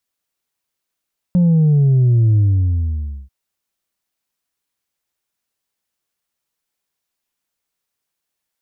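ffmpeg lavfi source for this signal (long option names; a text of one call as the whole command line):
ffmpeg -f lavfi -i "aevalsrc='0.316*clip((1.94-t)/0.92,0,1)*tanh(1.26*sin(2*PI*180*1.94/log(65/180)*(exp(log(65/180)*t/1.94)-1)))/tanh(1.26)':duration=1.94:sample_rate=44100" out.wav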